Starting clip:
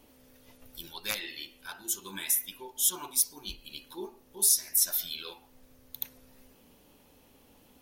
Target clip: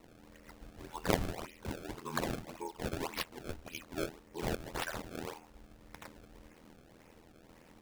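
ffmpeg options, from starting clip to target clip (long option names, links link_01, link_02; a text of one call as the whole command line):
ffmpeg -i in.wav -af "aeval=exprs='val(0)*sin(2*PI*41*n/s)':channel_layout=same,highshelf=frequency=3100:width_type=q:width=3:gain=-13.5,acrusher=samples=26:mix=1:aa=0.000001:lfo=1:lforange=41.6:lforate=1.8,volume=5dB" out.wav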